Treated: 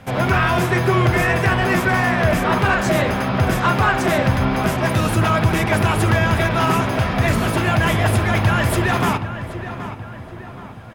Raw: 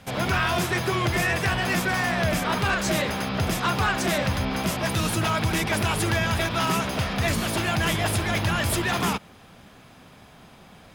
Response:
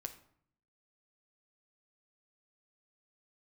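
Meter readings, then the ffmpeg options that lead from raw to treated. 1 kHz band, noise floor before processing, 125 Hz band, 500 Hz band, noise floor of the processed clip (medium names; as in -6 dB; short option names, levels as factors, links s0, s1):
+7.5 dB, -50 dBFS, +9.0 dB, +8.0 dB, -35 dBFS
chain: -filter_complex "[0:a]asplit=2[s0][s1];[s1]adelay=774,lowpass=f=2500:p=1,volume=0.282,asplit=2[s2][s3];[s3]adelay=774,lowpass=f=2500:p=1,volume=0.48,asplit=2[s4][s5];[s5]adelay=774,lowpass=f=2500:p=1,volume=0.48,asplit=2[s6][s7];[s7]adelay=774,lowpass=f=2500:p=1,volume=0.48,asplit=2[s8][s9];[s9]adelay=774,lowpass=f=2500:p=1,volume=0.48[s10];[s0][s2][s4][s6][s8][s10]amix=inputs=6:normalize=0,asplit=2[s11][s12];[1:a]atrim=start_sample=2205,lowpass=2700[s13];[s12][s13]afir=irnorm=-1:irlink=0,volume=1.88[s14];[s11][s14]amix=inputs=2:normalize=0"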